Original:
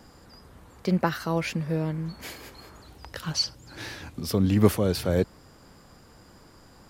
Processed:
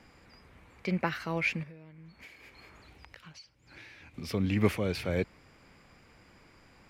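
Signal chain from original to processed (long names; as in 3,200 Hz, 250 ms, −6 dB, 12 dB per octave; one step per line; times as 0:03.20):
parametric band 2,300 Hz +14 dB 0.62 octaves
0:01.63–0:04.14: downward compressor 10 to 1, threshold −41 dBFS, peak gain reduction 21.5 dB
high-shelf EQ 8,900 Hz −10 dB
level −7 dB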